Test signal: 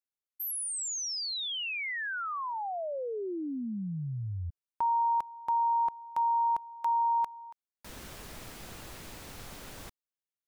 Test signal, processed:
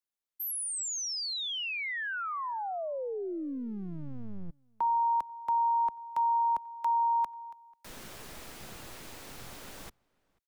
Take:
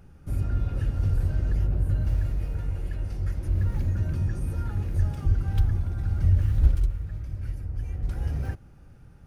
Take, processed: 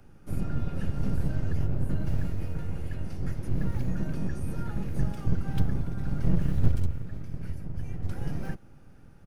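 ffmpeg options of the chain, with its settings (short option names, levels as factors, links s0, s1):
-filter_complex "[0:a]asplit=2[s0][s1];[s1]adelay=489.8,volume=0.0398,highshelf=f=4000:g=-11[s2];[s0][s2]amix=inputs=2:normalize=0,acrossover=split=160|300|720[s3][s4][s5][s6];[s3]aeval=exprs='abs(val(0))':c=same[s7];[s7][s4][s5][s6]amix=inputs=4:normalize=0"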